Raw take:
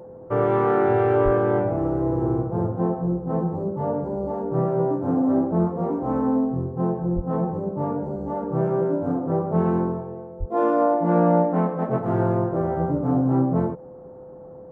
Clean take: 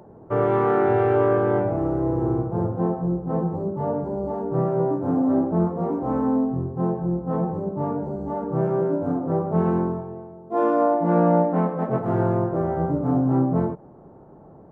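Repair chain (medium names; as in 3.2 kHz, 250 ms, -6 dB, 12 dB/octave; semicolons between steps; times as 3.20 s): band-stop 510 Hz, Q 30; 1.24–1.36 s: high-pass 140 Hz 24 dB/octave; 7.15–7.27 s: high-pass 140 Hz 24 dB/octave; 10.39–10.51 s: high-pass 140 Hz 24 dB/octave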